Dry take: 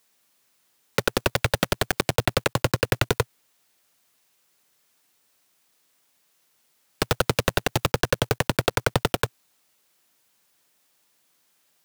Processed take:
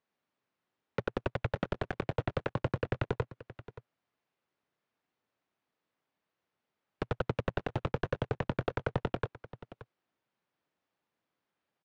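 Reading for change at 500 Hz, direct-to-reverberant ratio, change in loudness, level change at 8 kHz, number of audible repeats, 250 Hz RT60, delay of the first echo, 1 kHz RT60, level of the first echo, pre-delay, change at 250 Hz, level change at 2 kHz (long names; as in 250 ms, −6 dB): −9.0 dB, no reverb audible, −11.0 dB, below −30 dB, 1, no reverb audible, 576 ms, no reverb audible, −16.0 dB, no reverb audible, −8.5 dB, −14.0 dB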